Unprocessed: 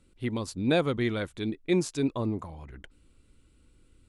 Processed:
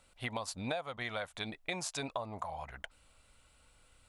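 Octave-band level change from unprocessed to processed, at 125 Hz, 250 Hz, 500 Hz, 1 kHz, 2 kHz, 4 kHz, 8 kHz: -13.5, -16.5, -11.5, -1.5, -3.5, -3.5, -1.0 dB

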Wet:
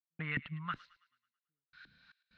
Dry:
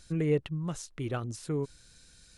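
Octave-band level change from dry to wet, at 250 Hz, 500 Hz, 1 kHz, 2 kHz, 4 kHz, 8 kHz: -14.5 dB, -26.5 dB, -1.5 dB, +4.5 dB, -5.0 dB, under -35 dB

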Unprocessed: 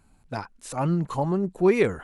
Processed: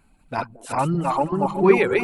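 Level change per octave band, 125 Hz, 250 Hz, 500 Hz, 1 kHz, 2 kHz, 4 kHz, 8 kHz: +0.5, +2.5, +4.0, +9.0, +7.0, +4.5, +1.0 dB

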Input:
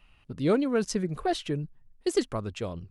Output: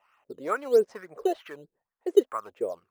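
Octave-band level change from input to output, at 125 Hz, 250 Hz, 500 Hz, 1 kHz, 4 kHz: under -20 dB, -6.0 dB, +4.0 dB, +1.0 dB, -9.0 dB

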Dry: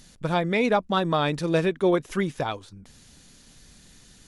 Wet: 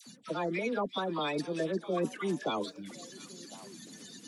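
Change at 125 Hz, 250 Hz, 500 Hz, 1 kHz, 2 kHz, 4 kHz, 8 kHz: -12.5, -8.5, -9.0, -9.0, -9.0, -6.5, -1.0 dB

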